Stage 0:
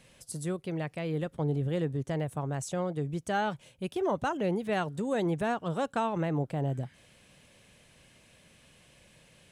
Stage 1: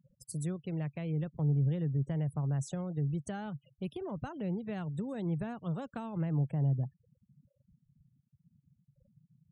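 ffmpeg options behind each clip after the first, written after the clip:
-filter_complex "[0:a]afftfilt=real='re*gte(hypot(re,im),0.00562)':imag='im*gte(hypot(re,im),0.00562)':win_size=1024:overlap=0.75,equalizer=f=140:t=o:w=0.39:g=4.5,acrossover=split=210[a][b];[b]acompressor=threshold=-42dB:ratio=5[c];[a][c]amix=inputs=2:normalize=0"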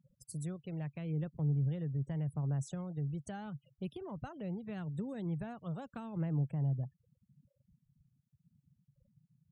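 -af "aphaser=in_gain=1:out_gain=1:delay=1.8:decay=0.24:speed=0.8:type=triangular,volume=-4.5dB"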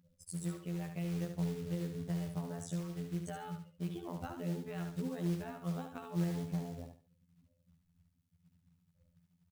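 -af "afftfilt=real='hypot(re,im)*cos(PI*b)':imag='0':win_size=2048:overlap=0.75,acrusher=bits=5:mode=log:mix=0:aa=0.000001,aecho=1:1:72|144|216:0.473|0.123|0.032,volume=4.5dB"

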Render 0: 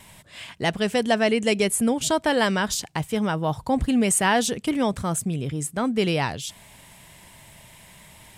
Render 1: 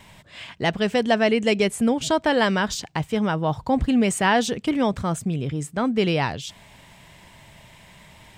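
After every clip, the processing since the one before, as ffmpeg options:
-af "equalizer=f=11k:w=0.99:g=-14.5,volume=1.5dB"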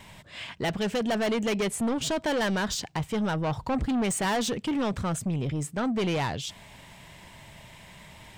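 -af "asoftclip=type=tanh:threshold=-23.5dB"

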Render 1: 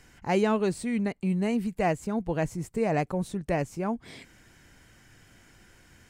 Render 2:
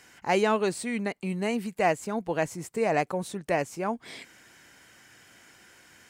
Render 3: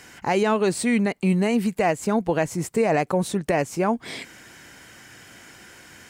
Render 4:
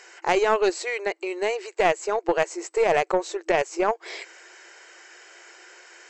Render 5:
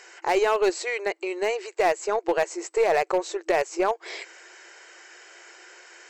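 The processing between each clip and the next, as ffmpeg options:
-af "highpass=f=510:p=1,volume=4.5dB"
-af "lowshelf=f=360:g=4,alimiter=limit=-20dB:level=0:latency=1:release=150,volume=8dB"
-af "equalizer=f=3.4k:t=o:w=0.22:g=-6,afftfilt=real='re*between(b*sr/4096,330,8000)':imag='im*between(b*sr/4096,330,8000)':win_size=4096:overlap=0.75,aeval=exprs='0.282*(cos(1*acos(clip(val(0)/0.282,-1,1)))-cos(1*PI/2))+0.0355*(cos(2*acos(clip(val(0)/0.282,-1,1)))-cos(2*PI/2))+0.0282*(cos(3*acos(clip(val(0)/0.282,-1,1)))-cos(3*PI/2))+0.00224*(cos(8*acos(clip(val(0)/0.282,-1,1)))-cos(8*PI/2))':c=same,volume=2.5dB"
-af "aeval=exprs='clip(val(0),-1,0.2)':c=same"

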